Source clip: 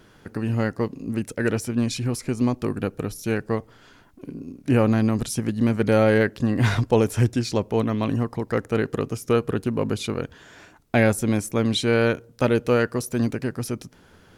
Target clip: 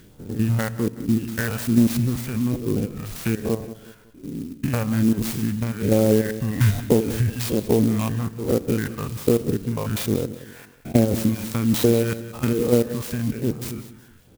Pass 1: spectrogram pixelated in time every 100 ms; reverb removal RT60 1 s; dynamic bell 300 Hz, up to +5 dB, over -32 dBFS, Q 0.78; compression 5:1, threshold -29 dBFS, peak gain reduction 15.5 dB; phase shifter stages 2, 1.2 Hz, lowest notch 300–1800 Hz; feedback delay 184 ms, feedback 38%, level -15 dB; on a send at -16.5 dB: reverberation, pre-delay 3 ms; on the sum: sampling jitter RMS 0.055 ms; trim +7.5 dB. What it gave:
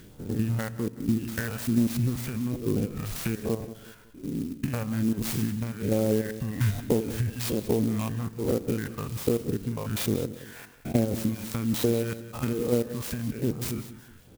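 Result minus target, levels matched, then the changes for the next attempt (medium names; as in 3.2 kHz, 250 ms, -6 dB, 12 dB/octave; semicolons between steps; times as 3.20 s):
compression: peak gain reduction +7 dB
change: compression 5:1, threshold -20 dBFS, peak gain reduction 8.5 dB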